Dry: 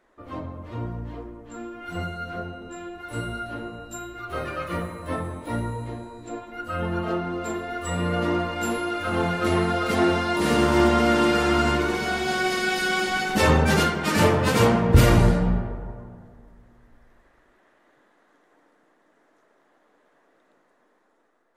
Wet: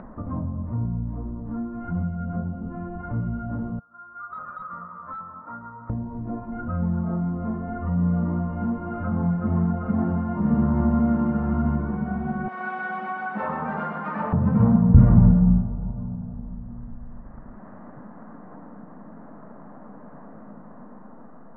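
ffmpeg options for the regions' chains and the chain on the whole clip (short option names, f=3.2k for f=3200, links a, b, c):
-filter_complex "[0:a]asettb=1/sr,asplit=3[a][b][c];[a]atrim=end=3.794[d];[b]atrim=start=3.79:end=5.9,asetpts=PTS-STARTPTS,afade=t=in:d=0.004:c=qsin,afade=t=out:st=2.106:d=0.004:c=qsin,bandpass=f=1.3k:t=q:w=11,aeval=exprs='0.0178*(abs(mod(val(0)/0.0178+3,4)-2)-1)':c=same[e];[c]atrim=start=5.896[f];[d][e]acrossfade=d=0.004:c1=hsin:c2=qsin[g];[g][f]acrossfade=d=0.004:c1=qsin:c2=hsin,asettb=1/sr,asplit=3[h][i][j];[h]atrim=end=12.484[k];[i]atrim=start=12.48:end=14.33,asetpts=PTS-STARTPTS,afade=t=in:d=0.004:c=qsin,afade=t=out:st=1.846:d=0.004:c=qsin,highpass=680,highshelf=f=3.4k:g=10.5,aecho=1:1:125:0.631,atrim=end_sample=81585[l];[j]atrim=start=14.326[m];[k][l]acrossfade=d=0.004:c1=hsin:c2=qsin[n];[n][m]acrossfade=d=0.004:c1=qsin:c2=hsin,lowpass=f=1.2k:w=0.5412,lowpass=f=1.2k:w=1.3066,lowshelf=f=270:t=q:w=3:g=9,acompressor=mode=upward:threshold=-13dB:ratio=2.5,volume=-7.5dB"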